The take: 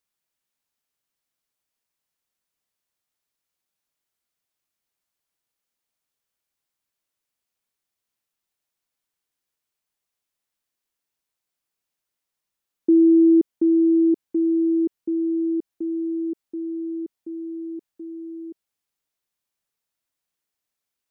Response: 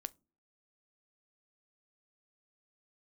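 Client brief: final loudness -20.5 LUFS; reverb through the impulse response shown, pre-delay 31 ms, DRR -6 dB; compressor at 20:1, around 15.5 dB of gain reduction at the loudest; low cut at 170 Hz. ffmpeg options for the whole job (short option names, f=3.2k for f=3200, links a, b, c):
-filter_complex "[0:a]highpass=170,acompressor=threshold=-28dB:ratio=20,asplit=2[a][b];[1:a]atrim=start_sample=2205,adelay=31[c];[b][c]afir=irnorm=-1:irlink=0,volume=9dB[d];[a][d]amix=inputs=2:normalize=0,volume=2.5dB"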